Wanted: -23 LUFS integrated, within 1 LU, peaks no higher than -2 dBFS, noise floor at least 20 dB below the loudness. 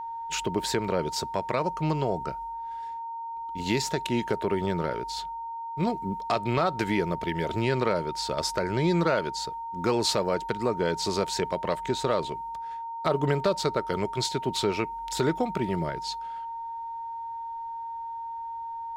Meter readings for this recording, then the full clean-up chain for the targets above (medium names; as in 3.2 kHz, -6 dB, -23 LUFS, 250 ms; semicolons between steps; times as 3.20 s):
steady tone 920 Hz; tone level -33 dBFS; loudness -29.0 LUFS; peak level -12.0 dBFS; loudness target -23.0 LUFS
-> band-stop 920 Hz, Q 30; trim +6 dB